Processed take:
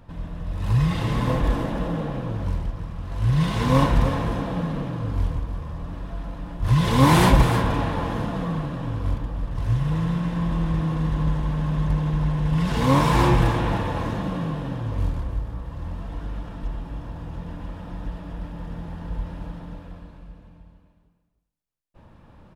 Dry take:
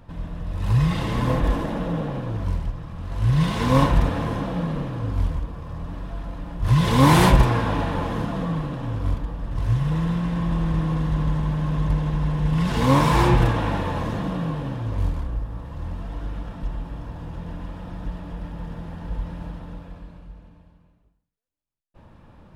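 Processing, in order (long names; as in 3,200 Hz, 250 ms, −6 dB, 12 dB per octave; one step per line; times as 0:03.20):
single-tap delay 308 ms −10 dB
level −1 dB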